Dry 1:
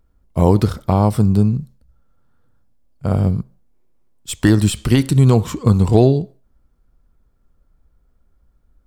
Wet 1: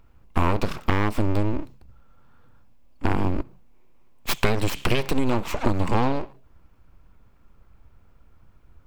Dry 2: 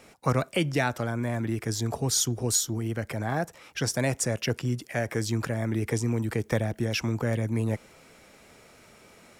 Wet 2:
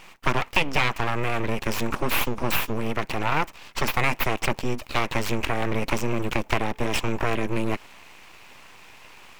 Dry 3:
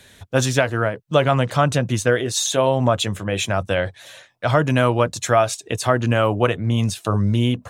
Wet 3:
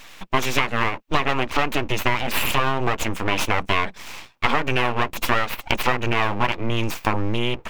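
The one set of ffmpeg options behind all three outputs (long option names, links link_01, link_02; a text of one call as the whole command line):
ffmpeg -i in.wav -af "acompressor=threshold=-23dB:ratio=6,aeval=exprs='abs(val(0))':channel_layout=same,equalizer=frequency=1000:width_type=o:width=0.67:gain=6,equalizer=frequency=2500:width_type=o:width=0.67:gain=9,equalizer=frequency=10000:width_type=o:width=0.67:gain=-5,volume=5.5dB" out.wav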